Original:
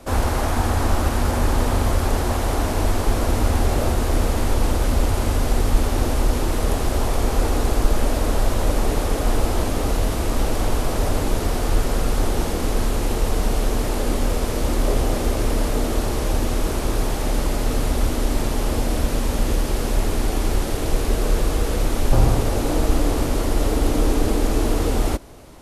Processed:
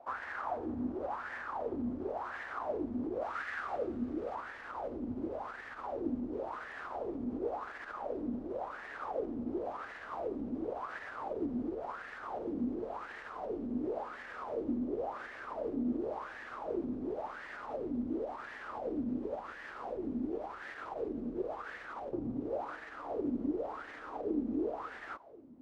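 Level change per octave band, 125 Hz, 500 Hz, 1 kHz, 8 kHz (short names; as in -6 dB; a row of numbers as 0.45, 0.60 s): -31.0 dB, -13.0 dB, -13.0 dB, under -40 dB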